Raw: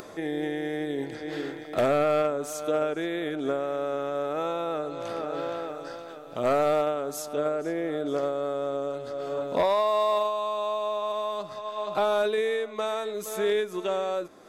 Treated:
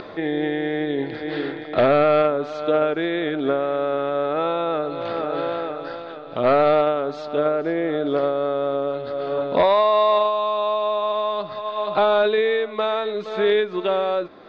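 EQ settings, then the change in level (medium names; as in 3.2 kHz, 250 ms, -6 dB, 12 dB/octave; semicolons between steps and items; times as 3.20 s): elliptic low-pass 4.2 kHz, stop band 80 dB; +7.5 dB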